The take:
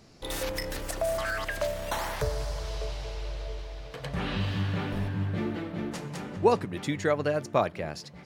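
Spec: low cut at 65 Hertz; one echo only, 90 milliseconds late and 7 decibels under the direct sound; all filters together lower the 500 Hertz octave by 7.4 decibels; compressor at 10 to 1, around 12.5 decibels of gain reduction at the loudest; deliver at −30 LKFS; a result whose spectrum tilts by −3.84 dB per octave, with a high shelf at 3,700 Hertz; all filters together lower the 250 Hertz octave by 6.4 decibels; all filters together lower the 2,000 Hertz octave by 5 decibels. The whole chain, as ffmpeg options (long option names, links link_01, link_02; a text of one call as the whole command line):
ffmpeg -i in.wav -af "highpass=65,equalizer=frequency=250:width_type=o:gain=-7,equalizer=frequency=500:width_type=o:gain=-7.5,equalizer=frequency=2000:width_type=o:gain=-8,highshelf=frequency=3700:gain=7.5,acompressor=threshold=-36dB:ratio=10,aecho=1:1:90:0.447,volume=9.5dB" out.wav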